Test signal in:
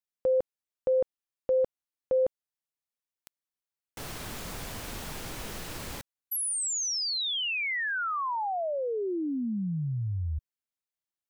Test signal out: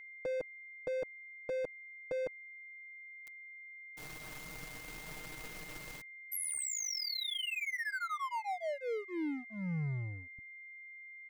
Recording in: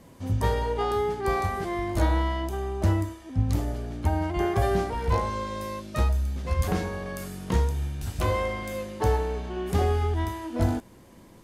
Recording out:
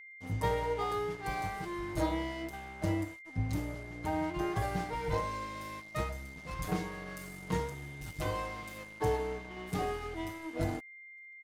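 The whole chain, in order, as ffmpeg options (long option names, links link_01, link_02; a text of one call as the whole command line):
ffmpeg -i in.wav -af "aecho=1:1:6.5:0.97,aeval=exprs='sgn(val(0))*max(abs(val(0))-0.0112,0)':channel_layout=same,aeval=exprs='val(0)+0.01*sin(2*PI*2100*n/s)':channel_layout=same,volume=-8.5dB" out.wav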